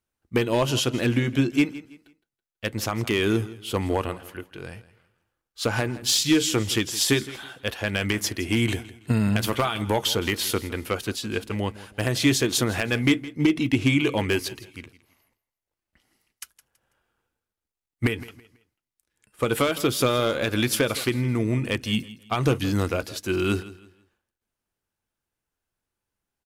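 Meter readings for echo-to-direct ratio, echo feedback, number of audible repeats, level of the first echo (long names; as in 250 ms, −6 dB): −17.0 dB, 30%, 2, −17.5 dB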